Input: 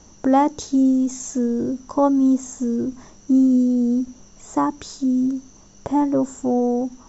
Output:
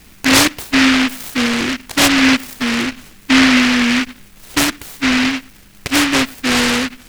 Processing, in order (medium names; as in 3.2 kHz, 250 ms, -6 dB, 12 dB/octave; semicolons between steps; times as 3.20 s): band-stop 6.9 kHz, Q 11; delay time shaken by noise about 2 kHz, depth 0.43 ms; trim +4.5 dB